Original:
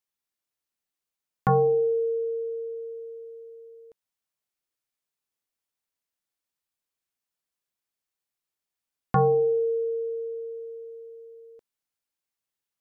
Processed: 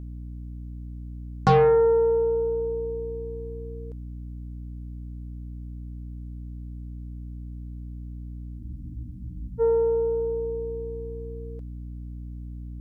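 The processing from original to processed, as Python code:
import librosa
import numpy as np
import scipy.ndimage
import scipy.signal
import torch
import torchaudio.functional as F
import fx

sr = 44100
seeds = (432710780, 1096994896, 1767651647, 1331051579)

y = fx.cheby_harmonics(x, sr, harmonics=(4, 5, 7), levels_db=(-20, -21, -34), full_scale_db=-15.0)
y = fx.dmg_buzz(y, sr, base_hz=60.0, harmonics=5, level_db=-40.0, tilt_db=-7, odd_only=False)
y = fx.spec_freeze(y, sr, seeds[0], at_s=8.61, hold_s=0.98)
y = y * 10.0 ** (3.5 / 20.0)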